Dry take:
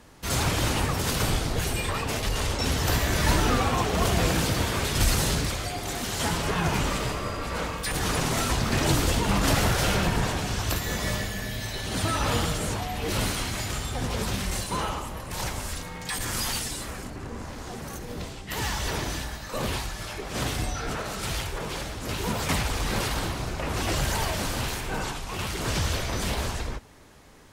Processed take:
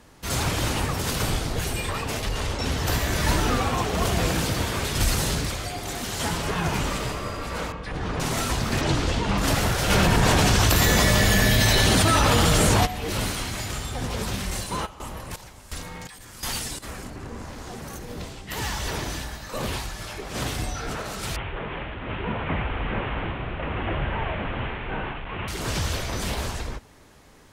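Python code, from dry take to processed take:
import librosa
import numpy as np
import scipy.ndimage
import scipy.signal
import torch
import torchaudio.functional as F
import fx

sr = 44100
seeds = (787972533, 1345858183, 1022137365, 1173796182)

y = fx.high_shelf(x, sr, hz=7100.0, db=-7.0, at=(2.25, 2.87))
y = fx.spacing_loss(y, sr, db_at_10k=26, at=(7.72, 8.2))
y = fx.lowpass(y, sr, hz=5500.0, slope=12, at=(8.81, 9.38))
y = fx.env_flatten(y, sr, amount_pct=100, at=(9.89, 12.85), fade=0.02)
y = fx.chopper(y, sr, hz=1.4, depth_pct=80, duty_pct=50, at=(14.85, 16.82), fade=0.02)
y = fx.delta_mod(y, sr, bps=16000, step_db=-30.5, at=(21.36, 25.48))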